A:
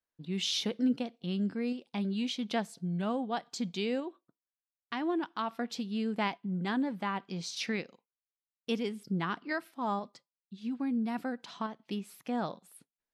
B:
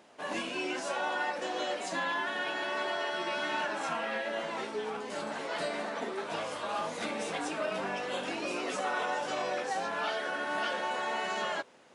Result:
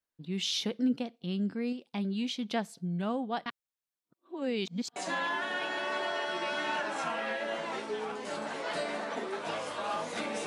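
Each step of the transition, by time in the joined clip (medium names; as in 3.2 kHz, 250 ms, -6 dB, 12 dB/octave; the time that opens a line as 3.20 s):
A
3.46–4.96 s: reverse
4.96 s: go over to B from 1.81 s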